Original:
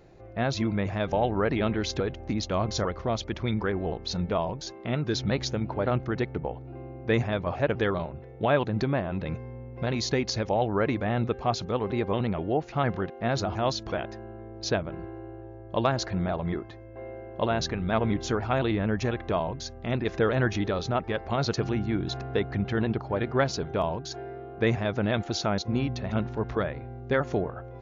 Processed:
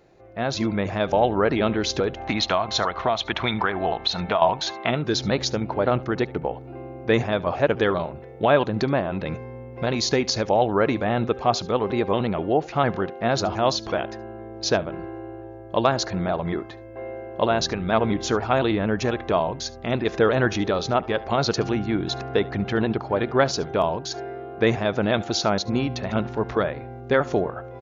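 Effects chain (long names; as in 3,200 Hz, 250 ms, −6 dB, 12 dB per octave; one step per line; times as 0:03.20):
dynamic equaliser 2,000 Hz, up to −3 dB, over −42 dBFS, Q 1.7
0:02.17–0:04.91: gain on a spectral selection 620–4,300 Hz +10 dB
low-shelf EQ 160 Hz −10 dB
0:02.20–0:04.42: downward compressor 6 to 1, threshold −26 dBFS, peak gain reduction 11.5 dB
single-tap delay 72 ms −22 dB
automatic gain control gain up to 7 dB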